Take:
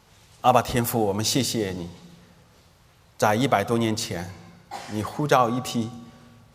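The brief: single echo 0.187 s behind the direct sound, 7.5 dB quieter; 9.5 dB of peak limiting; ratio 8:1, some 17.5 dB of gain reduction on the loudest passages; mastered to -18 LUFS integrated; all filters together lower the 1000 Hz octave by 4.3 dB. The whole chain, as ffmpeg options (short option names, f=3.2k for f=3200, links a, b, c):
-af "equalizer=f=1k:t=o:g=-6.5,acompressor=threshold=-35dB:ratio=8,alimiter=level_in=7dB:limit=-24dB:level=0:latency=1,volume=-7dB,aecho=1:1:187:0.422,volume=24dB"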